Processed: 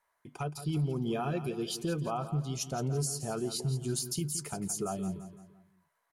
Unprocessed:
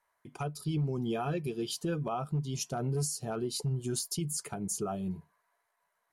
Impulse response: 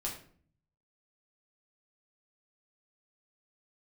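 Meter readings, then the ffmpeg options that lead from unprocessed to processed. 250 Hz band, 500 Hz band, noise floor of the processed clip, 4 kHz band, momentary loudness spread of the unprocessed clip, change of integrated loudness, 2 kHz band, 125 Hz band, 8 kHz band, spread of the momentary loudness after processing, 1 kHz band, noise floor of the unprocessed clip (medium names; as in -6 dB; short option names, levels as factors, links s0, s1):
+0.5 dB, +0.5 dB, -78 dBFS, +0.5 dB, 5 LU, 0.0 dB, +0.5 dB, +0.5 dB, +0.5 dB, 6 LU, +0.5 dB, -79 dBFS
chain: -af "aecho=1:1:170|340|510|680:0.251|0.108|0.0464|0.02"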